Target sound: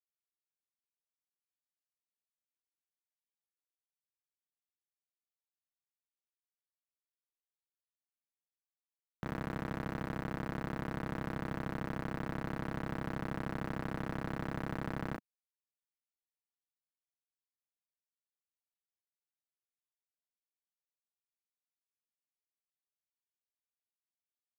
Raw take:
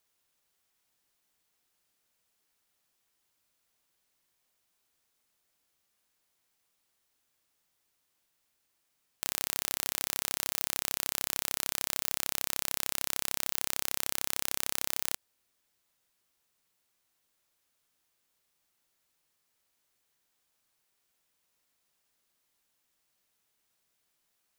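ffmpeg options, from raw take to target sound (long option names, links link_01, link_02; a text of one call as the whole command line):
ffmpeg -i in.wav -filter_complex "[0:a]highpass=frequency=170:width_type=q:width=0.5412,highpass=frequency=170:width_type=q:width=1.307,lowpass=frequency=2200:width_type=q:width=0.5176,lowpass=frequency=2200:width_type=q:width=0.7071,lowpass=frequency=2200:width_type=q:width=1.932,afreqshift=-360,alimiter=level_in=5dB:limit=-24dB:level=0:latency=1:release=146,volume=-5dB,asplit=2[link_01][link_02];[link_02]aecho=0:1:15|36:0.266|0.422[link_03];[link_01][link_03]amix=inputs=2:normalize=0,acrusher=bits=9:mix=0:aa=0.000001,asoftclip=type=tanh:threshold=-35.5dB,equalizer=frequency=200:width_type=o:width=2:gain=12.5,volume=5.5dB" out.wav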